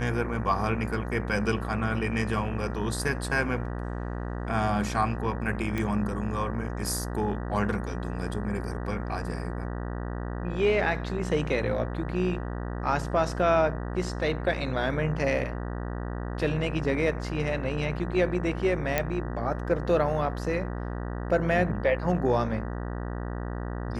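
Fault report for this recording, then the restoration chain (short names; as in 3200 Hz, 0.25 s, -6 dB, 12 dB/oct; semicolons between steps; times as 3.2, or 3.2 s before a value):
buzz 60 Hz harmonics 32 -33 dBFS
5.78 pop -17 dBFS
18.98 pop -9 dBFS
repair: de-click; de-hum 60 Hz, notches 32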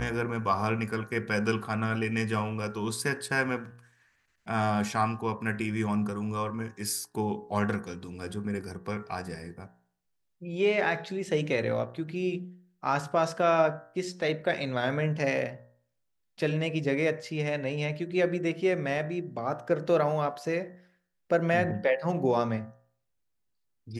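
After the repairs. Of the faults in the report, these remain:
none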